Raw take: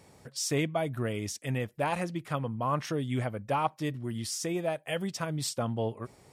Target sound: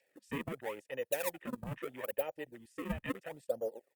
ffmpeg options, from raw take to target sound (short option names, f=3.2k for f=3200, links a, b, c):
-filter_complex "[0:a]adynamicequalizer=threshold=0.00631:dfrequency=1200:dqfactor=2.8:tfrequency=1200:tqfactor=2.8:attack=5:release=100:ratio=0.375:range=2:mode=boostabove:tftype=bell,asplit=3[a][b][c];[a]bandpass=f=530:t=q:w=8,volume=0dB[d];[b]bandpass=f=1.84k:t=q:w=8,volume=-6dB[e];[c]bandpass=f=2.48k:t=q:w=8,volume=-9dB[f];[d][e][f]amix=inputs=3:normalize=0,atempo=1.6,acrossover=split=210|730|7200[g][h][i][j];[g]alimiter=level_in=35dB:limit=-24dB:level=0:latency=1:release=242,volume=-35dB[k];[h]acrusher=samples=35:mix=1:aa=0.000001:lfo=1:lforange=56:lforate=0.76[l];[i]acompressor=mode=upward:threshold=-54dB:ratio=2.5[m];[j]aemphasis=mode=production:type=cd[n];[k][l][m][n]amix=inputs=4:normalize=0,aexciter=amount=4.5:drive=2.3:freq=7.6k,afwtdn=0.00251,volume=4.5dB" -ar 48000 -c:a libopus -b:a 64k